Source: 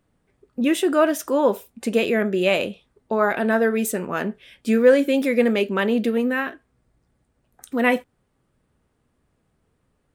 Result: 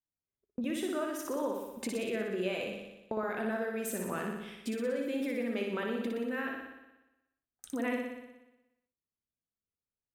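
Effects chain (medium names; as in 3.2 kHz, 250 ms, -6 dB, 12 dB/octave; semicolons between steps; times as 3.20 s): gate -47 dBFS, range -31 dB; compression 6:1, threshold -29 dBFS, peak gain reduction 18.5 dB; on a send: flutter echo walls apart 10.3 m, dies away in 1 s; on the sum: trim -5 dB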